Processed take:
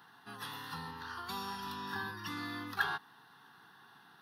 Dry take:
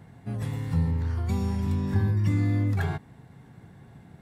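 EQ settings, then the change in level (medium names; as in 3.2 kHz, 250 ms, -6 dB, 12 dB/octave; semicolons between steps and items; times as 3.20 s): high-pass 830 Hz 12 dB/octave; static phaser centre 2.2 kHz, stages 6; +7.0 dB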